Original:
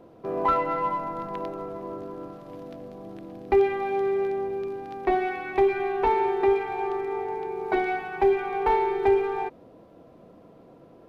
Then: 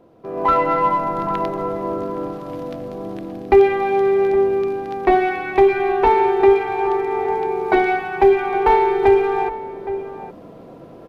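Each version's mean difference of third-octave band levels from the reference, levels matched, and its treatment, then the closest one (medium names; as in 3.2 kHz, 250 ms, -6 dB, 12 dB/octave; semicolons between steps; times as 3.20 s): 1.5 dB: echo from a far wall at 140 m, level -15 dB; level rider gain up to 12 dB; trim -1 dB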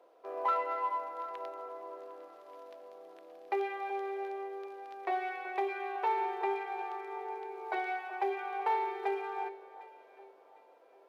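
6.5 dB: high-pass 480 Hz 24 dB/octave; echo whose repeats swap between lows and highs 377 ms, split 1.3 kHz, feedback 55%, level -13 dB; trim -7 dB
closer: first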